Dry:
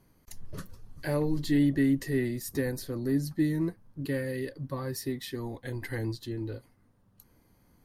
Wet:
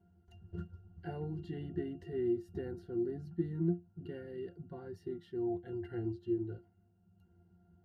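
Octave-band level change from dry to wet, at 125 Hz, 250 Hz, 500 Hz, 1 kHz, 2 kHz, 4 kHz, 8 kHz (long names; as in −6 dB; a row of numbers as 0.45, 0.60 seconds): −8.5 dB, −9.0 dB, −4.5 dB, −8.0 dB, −18.5 dB, below −20 dB, below −30 dB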